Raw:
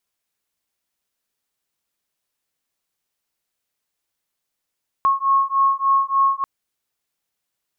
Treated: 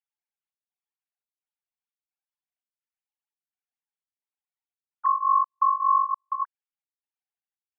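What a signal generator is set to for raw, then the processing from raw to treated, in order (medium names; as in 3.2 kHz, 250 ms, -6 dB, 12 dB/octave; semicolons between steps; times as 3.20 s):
beating tones 1.09 kHz, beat 3.4 Hz, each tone -18 dBFS 1.39 s
formants replaced by sine waves; dynamic bell 1.3 kHz, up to -4 dB, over -28 dBFS, Q 0.93; trance gate "xxxxxx.." 171 bpm -60 dB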